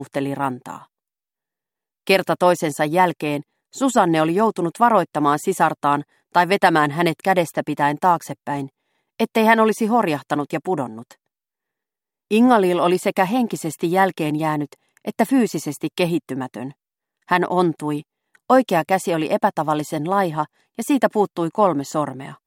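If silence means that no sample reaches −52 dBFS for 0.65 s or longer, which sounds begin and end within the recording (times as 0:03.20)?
0:02.07–0:11.15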